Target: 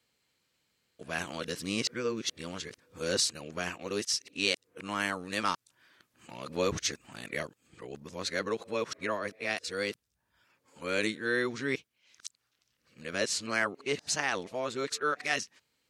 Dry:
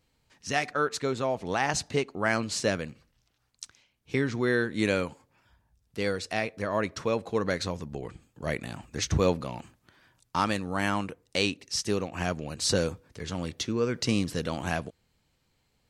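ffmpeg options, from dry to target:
ffmpeg -i in.wav -af "areverse,highpass=frequency=500:poles=1,equalizer=frequency=800:width_type=o:width=0.73:gain=-7" out.wav

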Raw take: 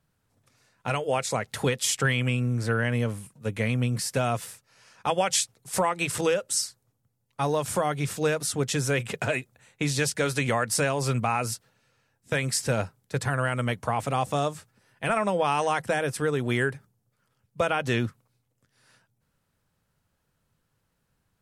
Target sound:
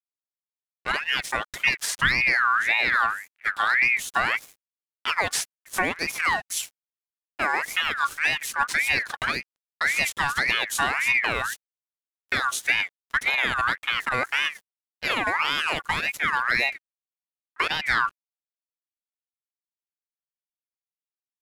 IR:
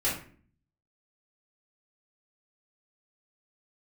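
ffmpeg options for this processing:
-af "lowshelf=frequency=270:gain=8.5,aeval=exprs='sgn(val(0))*max(abs(val(0))-0.00841,0)':channel_layout=same,aeval=exprs='val(0)*sin(2*PI*1800*n/s+1800*0.3/1.8*sin(2*PI*1.8*n/s))':channel_layout=same,volume=1.5dB"

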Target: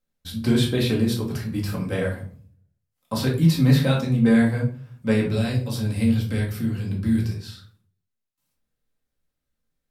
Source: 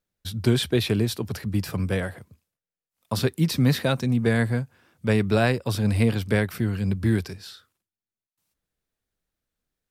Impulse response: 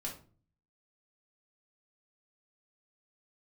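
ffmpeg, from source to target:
-filter_complex "[0:a]asettb=1/sr,asplit=3[link_01][link_02][link_03];[link_01]atrim=end=5.264[link_04];[link_02]atrim=start=5.26:end=7.48,asetpts=PTS-STARTPTS,afade=type=in:duration=0.004:curve=qsin,afade=type=out:start_time=2.216:duration=0.004:curve=qsin,acrossover=split=200|3000[link_05][link_06][link_07];[link_06]acompressor=threshold=-36dB:ratio=2.5[link_08];[link_05][link_08][link_07]amix=inputs=3:normalize=0[link_09];[link_03]atrim=start=7.476[link_10];[link_04][link_09]acrossfade=duration=0.004:curve1=hsin:curve2=qsin[link_11];[link_11][link_10]acrossfade=duration=0.004:curve1=qsin:curve2=hsin[link_12];[1:a]atrim=start_sample=2205,asetrate=39249,aresample=44100[link_13];[link_12][link_13]afir=irnorm=-1:irlink=0"

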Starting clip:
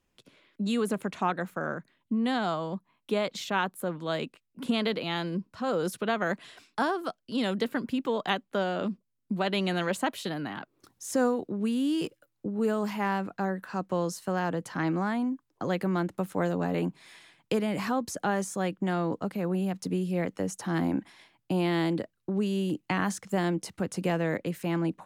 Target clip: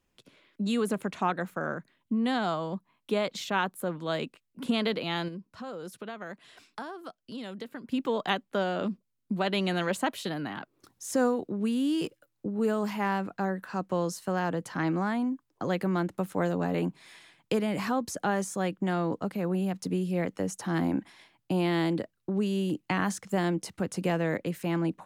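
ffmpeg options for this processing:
ffmpeg -i in.wav -filter_complex "[0:a]asettb=1/sr,asplit=3[link_01][link_02][link_03];[link_01]atrim=end=5.284[link_04];[link_02]atrim=start=5.28:end=7.92,asetpts=PTS-STARTPTS,afade=type=in:duration=0.004:curve=qsin,afade=type=out:start_time=2.636:duration=0.004:curve=qsin,acompressor=threshold=-42dB:ratio=2.5[link_05];[link_03]atrim=start=7.916[link_06];[link_04][link_05]acrossfade=duration=0.004:curve1=hsin:curve2=qsin[link_07];[link_07][link_06]acrossfade=duration=0.004:curve1=qsin:curve2=hsin" out.wav

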